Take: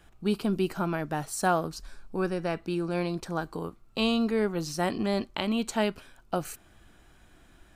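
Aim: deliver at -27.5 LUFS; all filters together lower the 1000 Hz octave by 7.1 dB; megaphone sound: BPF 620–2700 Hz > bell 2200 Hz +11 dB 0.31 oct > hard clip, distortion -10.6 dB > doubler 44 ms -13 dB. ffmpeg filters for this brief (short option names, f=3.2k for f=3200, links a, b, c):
-filter_complex "[0:a]highpass=620,lowpass=2.7k,equalizer=f=1k:t=o:g=-9,equalizer=f=2.2k:t=o:w=0.31:g=11,asoftclip=type=hard:threshold=-29dB,asplit=2[a][b];[b]adelay=44,volume=-13dB[c];[a][c]amix=inputs=2:normalize=0,volume=11.5dB"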